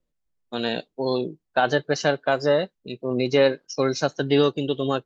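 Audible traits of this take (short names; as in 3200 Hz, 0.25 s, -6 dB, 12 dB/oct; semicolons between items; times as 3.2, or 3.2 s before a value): noise floor -78 dBFS; spectral tilt -4.0 dB/oct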